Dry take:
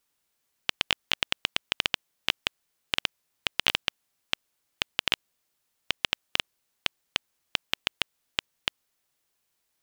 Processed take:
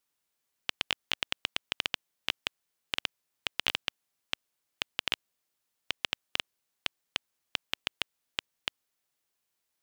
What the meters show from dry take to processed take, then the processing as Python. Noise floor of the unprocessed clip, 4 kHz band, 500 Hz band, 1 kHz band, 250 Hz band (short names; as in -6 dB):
-78 dBFS, -5.0 dB, -5.0 dB, -5.0 dB, -5.5 dB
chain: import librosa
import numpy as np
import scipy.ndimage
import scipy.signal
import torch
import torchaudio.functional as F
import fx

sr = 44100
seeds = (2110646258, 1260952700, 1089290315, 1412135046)

y = fx.low_shelf(x, sr, hz=85.0, db=-5.0)
y = F.gain(torch.from_numpy(y), -5.0).numpy()